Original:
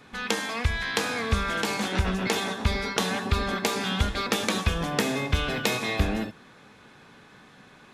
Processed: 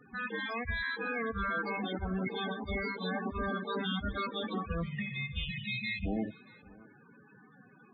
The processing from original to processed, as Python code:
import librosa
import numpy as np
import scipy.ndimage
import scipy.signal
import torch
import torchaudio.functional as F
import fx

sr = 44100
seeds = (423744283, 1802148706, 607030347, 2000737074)

p1 = fx.highpass(x, sr, hz=62.0, slope=6)
p2 = fx.spec_box(p1, sr, start_s=4.82, length_s=1.24, low_hz=220.0, high_hz=1800.0, gain_db=-28)
p3 = fx.lowpass(p2, sr, hz=3100.0, slope=24, at=(4.54, 5.14))
p4 = fx.over_compress(p3, sr, threshold_db=-28.0, ratio=-0.5)
p5 = fx.spec_topn(p4, sr, count=16)
p6 = p5 + fx.echo_single(p5, sr, ms=629, db=-23.5, dry=0)
y = F.gain(torch.from_numpy(p6), -4.0).numpy()